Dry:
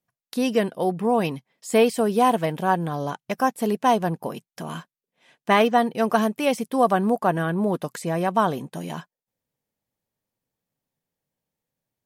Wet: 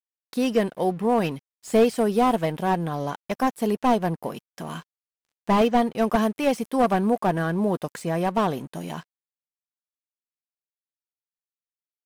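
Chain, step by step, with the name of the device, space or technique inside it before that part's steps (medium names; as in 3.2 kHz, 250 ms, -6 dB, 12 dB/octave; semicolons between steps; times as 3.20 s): early transistor amplifier (crossover distortion -48.5 dBFS; slew-rate limiter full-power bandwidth 120 Hz)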